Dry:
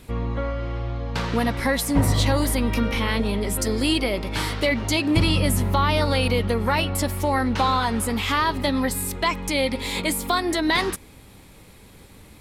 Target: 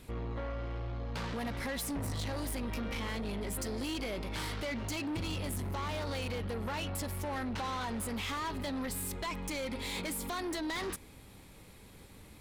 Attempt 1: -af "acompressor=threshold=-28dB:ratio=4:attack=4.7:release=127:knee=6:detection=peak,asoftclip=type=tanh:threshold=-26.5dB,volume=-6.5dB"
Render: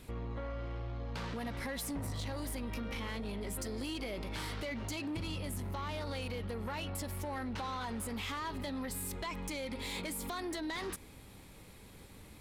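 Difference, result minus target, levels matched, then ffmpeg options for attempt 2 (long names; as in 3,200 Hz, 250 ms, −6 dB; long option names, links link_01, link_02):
downward compressor: peak gain reduction +6 dB
-af "acompressor=threshold=-20dB:ratio=4:attack=4.7:release=127:knee=6:detection=peak,asoftclip=type=tanh:threshold=-26.5dB,volume=-6.5dB"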